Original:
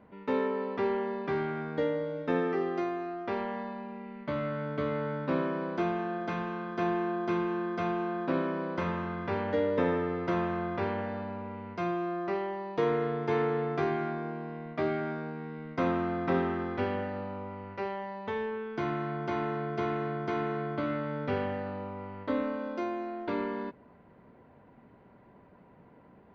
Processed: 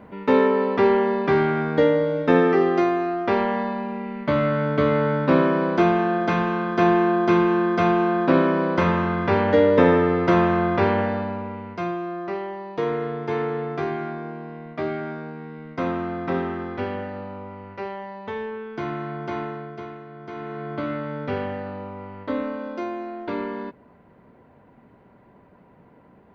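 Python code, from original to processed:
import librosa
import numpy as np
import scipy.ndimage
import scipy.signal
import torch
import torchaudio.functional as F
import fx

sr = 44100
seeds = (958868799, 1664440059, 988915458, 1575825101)

y = fx.gain(x, sr, db=fx.line((11.02, 12.0), (12.02, 3.0), (19.38, 3.0), (20.06, -8.5), (20.78, 4.0)))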